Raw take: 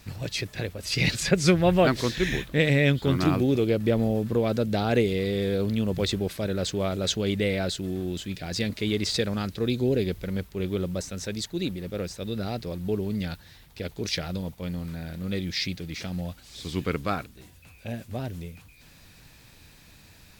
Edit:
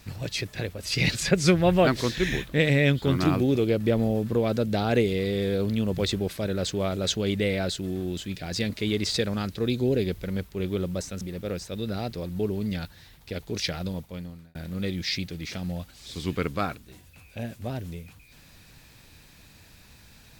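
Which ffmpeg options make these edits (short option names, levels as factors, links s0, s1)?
-filter_complex "[0:a]asplit=3[s0][s1][s2];[s0]atrim=end=11.212[s3];[s1]atrim=start=11.698:end=15.04,asetpts=PTS-STARTPTS,afade=t=out:st=2.742:d=0.6[s4];[s2]atrim=start=15.04,asetpts=PTS-STARTPTS,afade=t=in:d=0.004:c=hsin[s5];[s4][s5]concat=n=2:v=0:a=1[s6];[s3][s6]acrossfade=d=0.004:c1=hsin:c2=hsin"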